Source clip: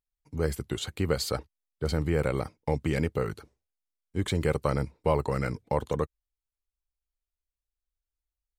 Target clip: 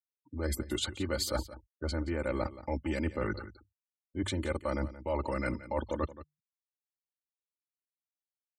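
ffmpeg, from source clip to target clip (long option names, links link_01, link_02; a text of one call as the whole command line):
ffmpeg -i in.wav -af "bandreject=frequency=50:width_type=h:width=6,bandreject=frequency=100:width_type=h:width=6,bandreject=frequency=150:width_type=h:width=6,afftfilt=real='re*gte(hypot(re,im),0.00562)':imag='im*gte(hypot(re,im),0.00562)':win_size=1024:overlap=0.75,aecho=1:1:3.4:0.89,areverse,acompressor=threshold=-34dB:ratio=8,areverse,aecho=1:1:175:0.168,volume=4.5dB" out.wav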